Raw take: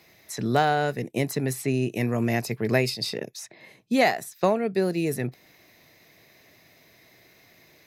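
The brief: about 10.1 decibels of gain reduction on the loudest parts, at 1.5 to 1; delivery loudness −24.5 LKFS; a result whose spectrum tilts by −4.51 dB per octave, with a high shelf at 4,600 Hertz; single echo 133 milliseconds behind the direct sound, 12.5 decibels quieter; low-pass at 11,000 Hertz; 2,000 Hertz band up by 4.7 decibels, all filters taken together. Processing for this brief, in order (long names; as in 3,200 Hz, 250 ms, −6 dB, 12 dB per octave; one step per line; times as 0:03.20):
low-pass filter 11,000 Hz
parametric band 2,000 Hz +6.5 dB
high-shelf EQ 4,600 Hz −5.5 dB
downward compressor 1.5 to 1, threshold −43 dBFS
single-tap delay 133 ms −12.5 dB
level +9 dB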